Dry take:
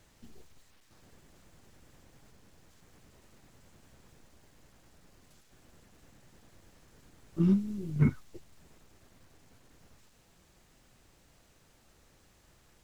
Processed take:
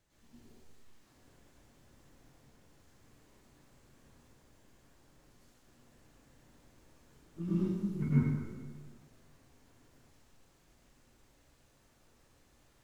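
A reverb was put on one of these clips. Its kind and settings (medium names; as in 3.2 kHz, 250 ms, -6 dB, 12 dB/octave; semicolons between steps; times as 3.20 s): plate-style reverb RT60 1.5 s, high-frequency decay 0.7×, pre-delay 90 ms, DRR -10 dB; trim -13.5 dB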